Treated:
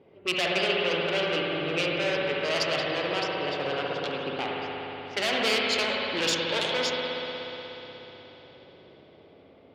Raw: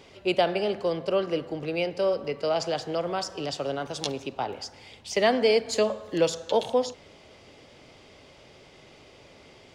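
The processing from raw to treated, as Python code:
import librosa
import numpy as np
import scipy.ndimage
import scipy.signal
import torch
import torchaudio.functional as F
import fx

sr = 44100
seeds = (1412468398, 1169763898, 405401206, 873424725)

y = fx.env_lowpass(x, sr, base_hz=540.0, full_db=-19.0)
y = np.clip(10.0 ** (25.5 / 20.0) * y, -1.0, 1.0) / 10.0 ** (25.5 / 20.0)
y = fx.tube_stage(y, sr, drive_db=27.0, bias=0.4)
y = fx.weighting(y, sr, curve='D')
y = fx.rev_spring(y, sr, rt60_s=4.0, pass_ms=(60,), chirp_ms=50, drr_db=-3.0)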